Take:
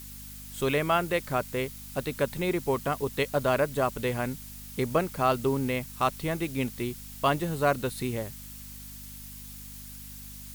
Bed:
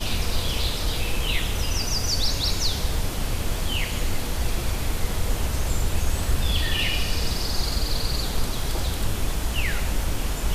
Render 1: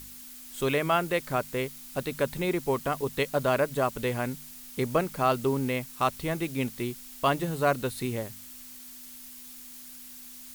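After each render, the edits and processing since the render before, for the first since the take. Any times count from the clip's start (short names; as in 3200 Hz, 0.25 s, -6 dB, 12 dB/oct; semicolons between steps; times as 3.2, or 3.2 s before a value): de-hum 50 Hz, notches 4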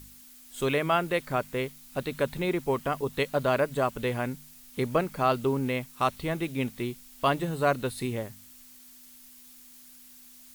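noise print and reduce 6 dB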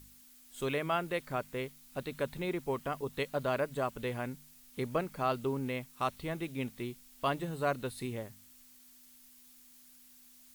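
gain -7 dB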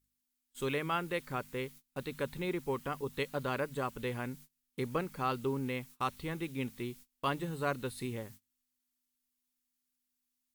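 gate -51 dBFS, range -26 dB; bell 650 Hz -12 dB 0.21 oct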